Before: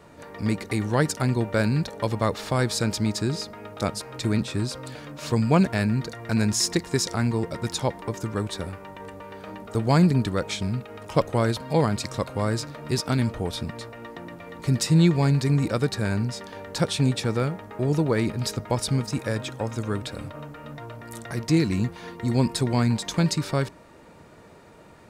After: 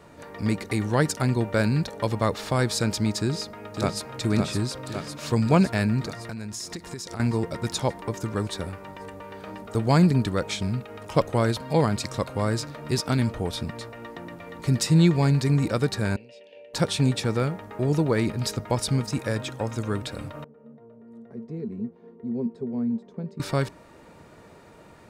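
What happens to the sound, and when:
0:03.18–0:04.07: delay throw 560 ms, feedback 70%, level −5 dB
0:06.27–0:07.20: downward compressor 12 to 1, threshold −31 dBFS
0:16.16–0:16.74: pair of resonant band-passes 1,200 Hz, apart 2.3 octaves
0:20.44–0:23.40: pair of resonant band-passes 310 Hz, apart 0.83 octaves

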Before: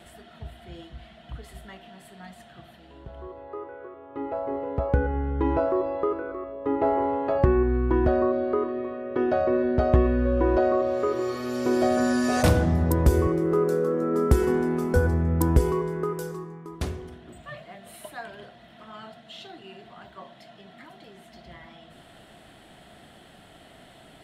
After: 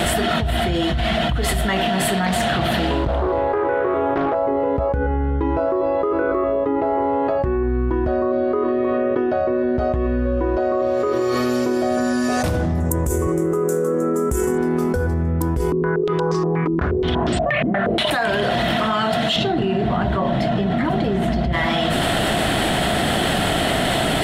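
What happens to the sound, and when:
0:02.26–0:04.35: highs frequency-modulated by the lows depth 0.73 ms
0:08.98–0:09.75: high-frequency loss of the air 62 metres
0:12.80–0:14.58: high shelf with overshoot 5,700 Hz +8.5 dB, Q 3
0:15.72–0:18.11: low-pass on a step sequencer 8.4 Hz 280–5,300 Hz
0:19.36–0:21.53: spectral tilt −3.5 dB per octave
whole clip: envelope flattener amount 100%; level −7 dB

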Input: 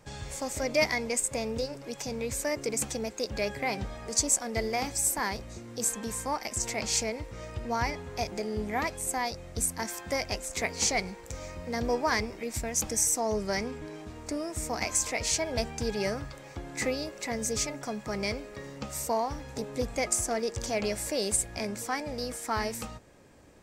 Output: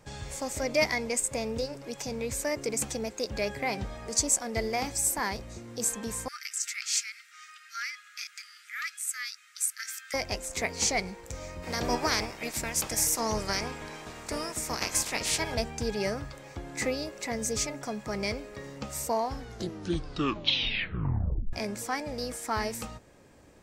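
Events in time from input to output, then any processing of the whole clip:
0:06.28–0:10.14: linear-phase brick-wall high-pass 1,200 Hz
0:11.62–0:15.54: ceiling on every frequency bin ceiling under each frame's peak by 17 dB
0:19.19: tape stop 2.34 s

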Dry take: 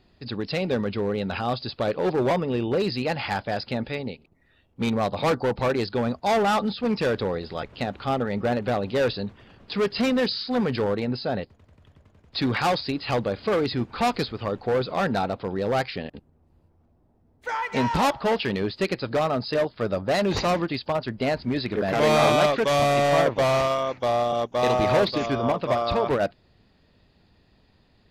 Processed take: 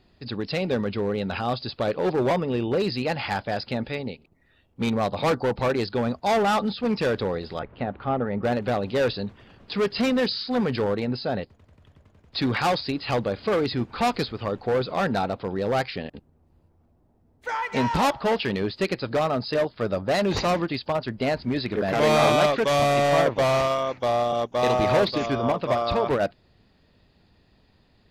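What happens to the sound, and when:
0:07.59–0:08.43: low-pass filter 1,800 Hz

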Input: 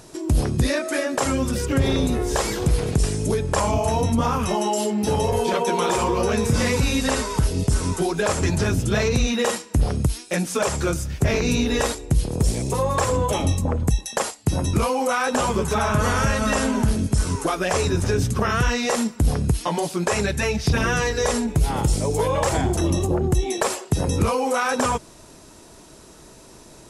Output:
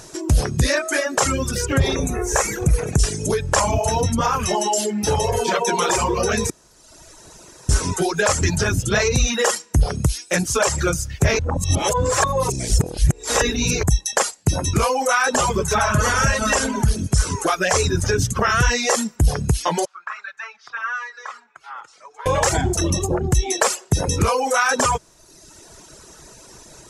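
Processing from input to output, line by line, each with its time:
0:01.95–0:02.99: gain on a spectral selection 2,700–5,500 Hz −10 dB
0:06.50–0:07.69: fill with room tone
0:09.89–0:10.43: delay throw 450 ms, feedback 70%, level −13 dB
0:11.39–0:13.83: reverse
0:19.85–0:22.26: four-pole ladder band-pass 1,400 Hz, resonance 60%
whole clip: reverb reduction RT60 1.1 s; graphic EQ with 15 bands 250 Hz −5 dB, 1,600 Hz +4 dB, 6,300 Hz +7 dB; level +3.5 dB

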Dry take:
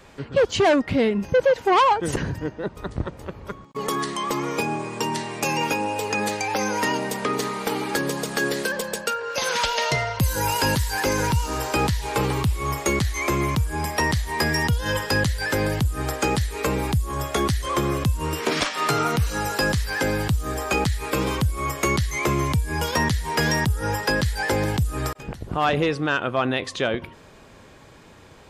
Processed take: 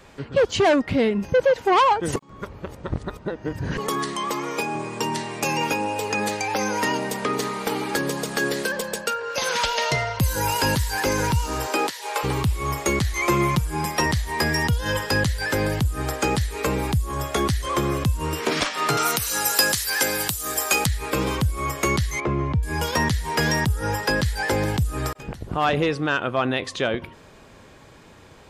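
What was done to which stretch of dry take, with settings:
0:02.16–0:03.78: reverse
0:04.30–0:04.75: low-shelf EQ 200 Hz −10.5 dB
0:11.66–0:12.23: high-pass filter 210 Hz → 590 Hz 24 dB per octave
0:13.13–0:14.06: comb filter 5.7 ms
0:18.97–0:20.86: RIAA equalisation recording
0:22.20–0:22.63: head-to-tape spacing loss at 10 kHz 36 dB

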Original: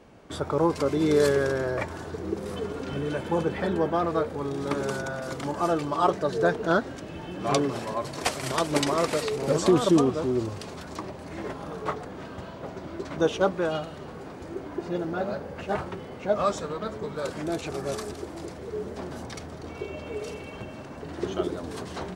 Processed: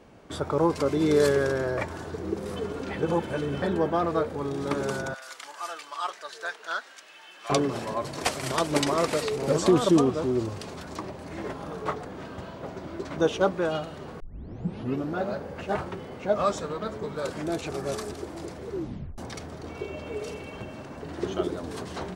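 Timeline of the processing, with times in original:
0:02.89–0:03.62: reverse
0:05.14–0:07.50: high-pass filter 1,500 Hz
0:14.20: tape start 0.95 s
0:18.71: tape stop 0.47 s

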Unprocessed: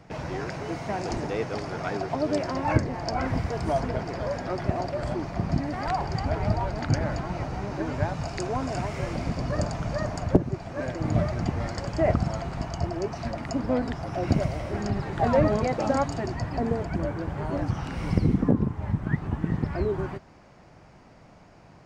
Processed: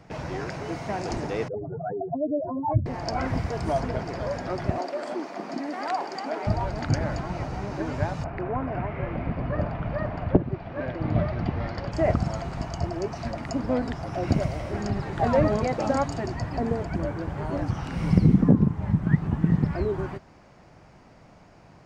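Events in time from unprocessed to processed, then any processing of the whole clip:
0:01.48–0:02.86: expanding power law on the bin magnitudes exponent 3.6
0:04.78–0:06.47: Butterworth high-pass 240 Hz
0:08.23–0:11.91: low-pass filter 2,100 Hz → 4,500 Hz 24 dB per octave
0:17.93–0:19.73: parametric band 170 Hz +8 dB

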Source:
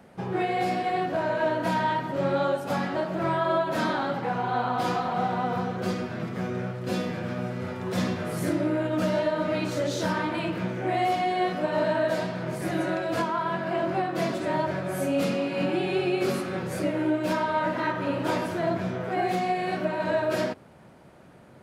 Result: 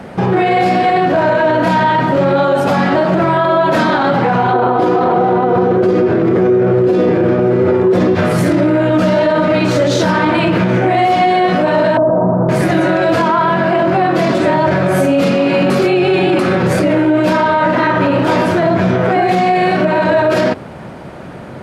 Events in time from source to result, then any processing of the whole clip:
0:04.53–0:08.15: drawn EQ curve 240 Hz 0 dB, 350 Hz +15 dB, 610 Hz +3 dB, 4,700 Hz −7 dB
0:11.97–0:12.49: Butterworth low-pass 1,100 Hz
0:15.70–0:16.39: reverse
whole clip: high-shelf EQ 7,500 Hz −12 dB; boost into a limiter +25.5 dB; level −4 dB

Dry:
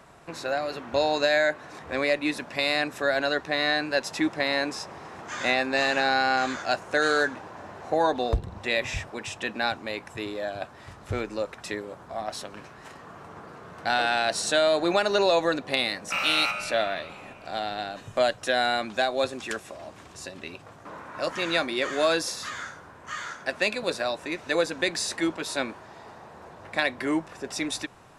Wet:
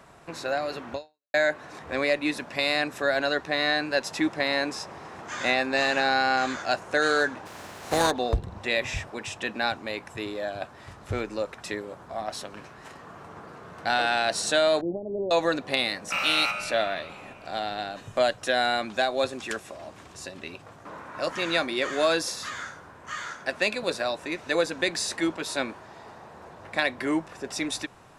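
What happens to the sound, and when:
0:00.93–0:01.34: fade out exponential
0:07.45–0:08.10: compressing power law on the bin magnitudes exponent 0.52
0:14.81–0:15.31: Gaussian smoothing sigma 19 samples

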